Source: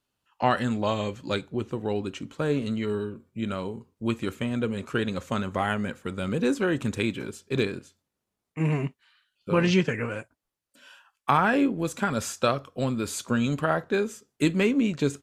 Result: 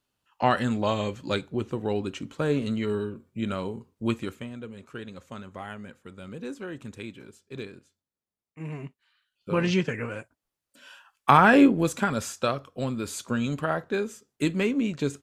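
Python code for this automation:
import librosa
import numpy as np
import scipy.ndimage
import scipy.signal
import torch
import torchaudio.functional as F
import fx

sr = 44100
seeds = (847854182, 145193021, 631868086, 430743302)

y = fx.gain(x, sr, db=fx.line((4.12, 0.5), (4.58, -12.0), (8.6, -12.0), (9.5, -2.5), (10.13, -2.5), (11.65, 6.5), (12.3, -2.5)))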